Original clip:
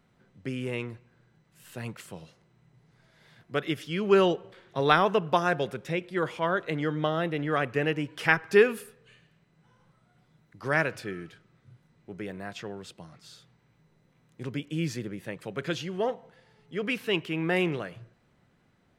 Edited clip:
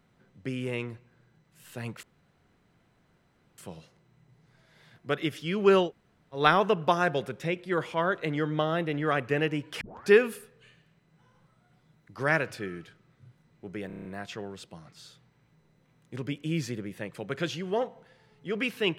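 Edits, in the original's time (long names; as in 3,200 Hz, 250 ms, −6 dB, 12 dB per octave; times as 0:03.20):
0:02.03: splice in room tone 1.55 s
0:04.31–0:04.84: fill with room tone, crossfade 0.16 s
0:08.26: tape start 0.27 s
0:12.32: stutter 0.03 s, 7 plays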